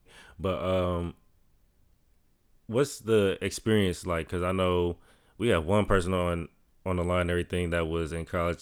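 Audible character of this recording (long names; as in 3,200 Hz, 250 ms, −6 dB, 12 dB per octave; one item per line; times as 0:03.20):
background noise floor −67 dBFS
spectral slope −5.5 dB per octave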